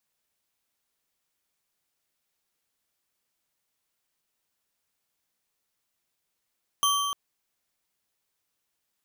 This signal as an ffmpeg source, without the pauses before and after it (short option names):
-f lavfi -i "aevalsrc='0.075*pow(10,-3*t/2.5)*sin(2*PI*1140*t)+0.0596*pow(10,-3*t/1.844)*sin(2*PI*3143*t)+0.0473*pow(10,-3*t/1.507)*sin(2*PI*6160.6*t)+0.0376*pow(10,-3*t/1.296)*sin(2*PI*10183.6*t)+0.0299*pow(10,-3*t/1.149)*sin(2*PI*15207.6*t)':d=0.3:s=44100"